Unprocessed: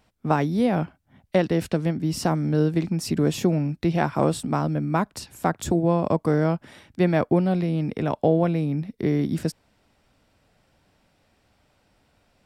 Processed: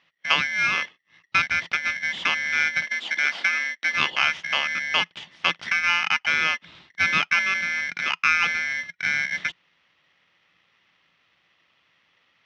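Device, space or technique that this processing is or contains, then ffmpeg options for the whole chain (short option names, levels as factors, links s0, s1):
ring modulator pedal into a guitar cabinet: -filter_complex "[0:a]aeval=exprs='val(0)*sgn(sin(2*PI*1900*n/s))':c=same,highpass=81,equalizer=f=170:t=q:w=4:g=9,equalizer=f=420:t=q:w=4:g=-5,equalizer=f=1700:t=q:w=4:g=-5,equalizer=f=3100:t=q:w=4:g=8,lowpass=f=4200:w=0.5412,lowpass=f=4200:w=1.3066,asettb=1/sr,asplit=3[s0][s1][s2];[s0]atrim=end=2.844[s3];[s1]atrim=start=2.84:end=3.92,asetpts=PTS-STARTPTS,afade=t=in:d=0.004:c=qsin,afade=t=out:st=1.076:d=0.004:c=qsin,highpass=f=230:w=0.5412,highpass=f=230:w=1.3066[s4];[s2]atrim=start=3.916[s5];[s3][s4]acrossfade=d=0.004:c1=hsin:c2=qsin[s6];[s6][s5]acrossfade=d=0.004:c1=qsin:c2=hsin"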